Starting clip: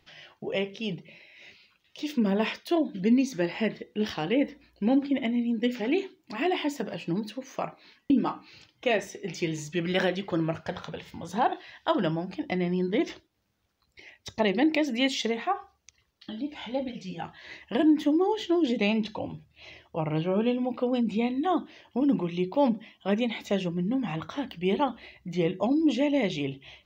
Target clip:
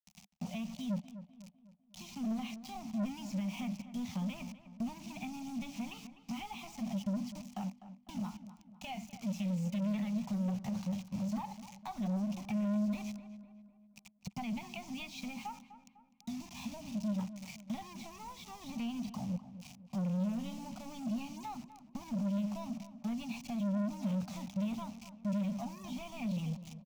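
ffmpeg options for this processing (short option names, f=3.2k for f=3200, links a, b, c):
-filter_complex "[0:a]highshelf=f=6.7k:g=-5.5,acrossover=split=3100[a][b];[b]acompressor=threshold=-47dB:ratio=4:attack=1:release=60[c];[a][c]amix=inputs=2:normalize=0,acrossover=split=110|710[d][e][f];[e]asoftclip=type=hard:threshold=-29.5dB[g];[d][g][f]amix=inputs=3:normalize=0,asetrate=50951,aresample=44100,atempo=0.865537,acrusher=bits=6:mix=0:aa=0.000001,acompressor=threshold=-34dB:ratio=4,firequalizer=gain_entry='entry(110,0);entry(200,14);entry(320,-24);entry(460,-30);entry(730,-4);entry(1600,-22);entry(2400,-5);entry(3600,-10);entry(5900,-1);entry(8800,-11)':delay=0.05:min_phase=1,asoftclip=type=tanh:threshold=-32dB,asplit=2[h][i];[i]adelay=251,lowpass=f=2.2k:p=1,volume=-13dB,asplit=2[j][k];[k]adelay=251,lowpass=f=2.2k:p=1,volume=0.47,asplit=2[l][m];[m]adelay=251,lowpass=f=2.2k:p=1,volume=0.47,asplit=2[n][o];[o]adelay=251,lowpass=f=2.2k:p=1,volume=0.47,asplit=2[p][q];[q]adelay=251,lowpass=f=2.2k:p=1,volume=0.47[r];[j][l][n][p][r]amix=inputs=5:normalize=0[s];[h][s]amix=inputs=2:normalize=0,volume=1dB"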